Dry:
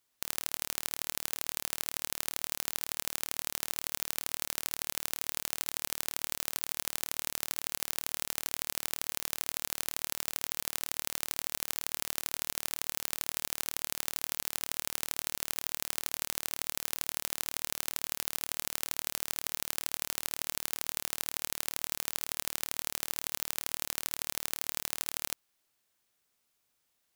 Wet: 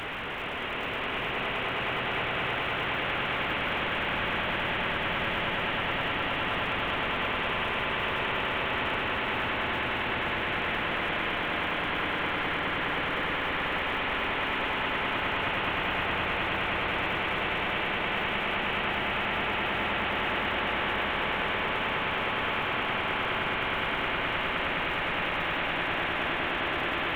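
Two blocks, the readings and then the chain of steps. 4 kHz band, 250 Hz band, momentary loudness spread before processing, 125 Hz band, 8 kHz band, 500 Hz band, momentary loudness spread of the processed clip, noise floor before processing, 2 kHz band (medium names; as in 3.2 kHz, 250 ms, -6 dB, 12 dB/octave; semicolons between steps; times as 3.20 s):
+6.5 dB, +16.0 dB, 0 LU, +15.5 dB, under -25 dB, +16.5 dB, 1 LU, -78 dBFS, +16.0 dB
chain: one-bit delta coder 16 kbps, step -24.5 dBFS; echo with a slow build-up 104 ms, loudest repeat 8, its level -7.5 dB; crackle 400 per s -42 dBFS; trim -3.5 dB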